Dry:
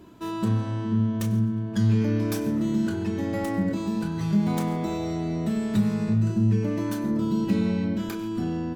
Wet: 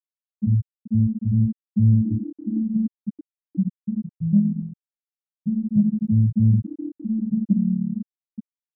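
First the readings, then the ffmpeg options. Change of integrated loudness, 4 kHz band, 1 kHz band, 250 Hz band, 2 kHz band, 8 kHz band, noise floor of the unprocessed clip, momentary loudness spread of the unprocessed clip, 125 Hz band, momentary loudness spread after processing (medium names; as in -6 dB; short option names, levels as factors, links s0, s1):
+3.0 dB, under -40 dB, under -35 dB, +2.0 dB, under -40 dB, under -35 dB, -32 dBFS, 6 LU, +3.5 dB, 14 LU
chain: -af "afftfilt=real='re*gte(hypot(re,im),0.501)':imag='im*gte(hypot(re,im),0.501)':win_size=1024:overlap=0.75,acontrast=44"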